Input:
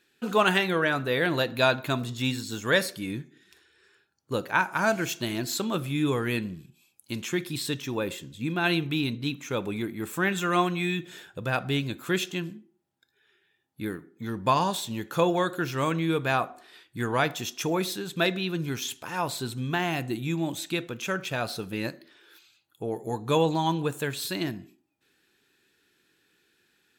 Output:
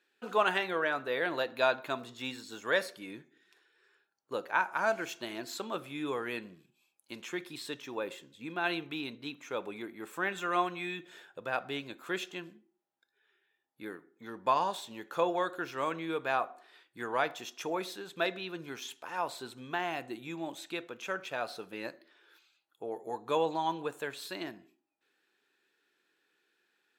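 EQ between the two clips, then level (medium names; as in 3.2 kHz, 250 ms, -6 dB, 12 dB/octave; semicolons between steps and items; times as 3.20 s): high-pass 610 Hz 12 dB/octave; tilt EQ -3 dB/octave; -3.5 dB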